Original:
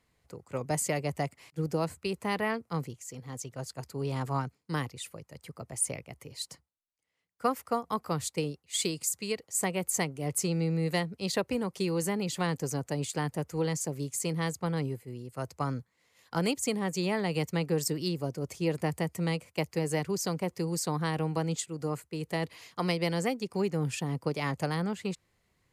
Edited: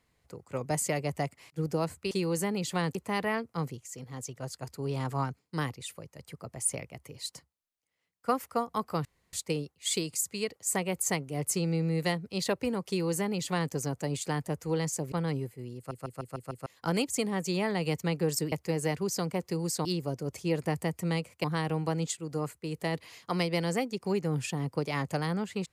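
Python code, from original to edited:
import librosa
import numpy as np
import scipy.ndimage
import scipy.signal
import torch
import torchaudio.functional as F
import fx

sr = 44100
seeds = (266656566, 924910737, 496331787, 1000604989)

y = fx.edit(x, sr, fx.insert_room_tone(at_s=8.21, length_s=0.28),
    fx.duplicate(start_s=11.76, length_s=0.84, to_s=2.11),
    fx.cut(start_s=14.0, length_s=0.61),
    fx.stutter_over(start_s=15.25, slice_s=0.15, count=6),
    fx.move(start_s=19.6, length_s=1.33, to_s=18.01), tone=tone)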